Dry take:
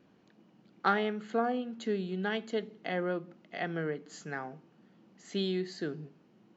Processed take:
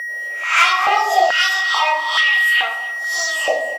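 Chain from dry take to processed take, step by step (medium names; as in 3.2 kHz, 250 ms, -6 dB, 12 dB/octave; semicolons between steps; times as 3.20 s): reverse spectral sustain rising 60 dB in 0.75 s; low-pass 5.9 kHz 12 dB/octave; tilt EQ +4 dB/octave; speed mistake 45 rpm record played at 78 rpm; delay 253 ms -16.5 dB; reverberation RT60 0.65 s, pre-delay 76 ms; whistle 1.9 kHz -32 dBFS; waveshaping leveller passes 1; dynamic bell 4.2 kHz, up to +4 dB, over -40 dBFS, Q 1.5; waveshaping leveller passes 1; step-sequenced high-pass 2.3 Hz 570–1800 Hz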